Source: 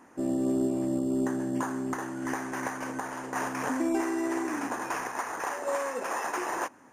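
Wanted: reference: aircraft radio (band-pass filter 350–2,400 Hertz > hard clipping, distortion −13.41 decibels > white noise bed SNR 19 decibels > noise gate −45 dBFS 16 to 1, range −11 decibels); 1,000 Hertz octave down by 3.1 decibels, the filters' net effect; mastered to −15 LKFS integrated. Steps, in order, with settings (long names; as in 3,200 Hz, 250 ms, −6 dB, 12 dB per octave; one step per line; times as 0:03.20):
band-pass filter 350–2,400 Hz
parametric band 1,000 Hz −3.5 dB
hard clipping −30.5 dBFS
white noise bed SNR 19 dB
noise gate −45 dBFS 16 to 1, range −11 dB
level +21 dB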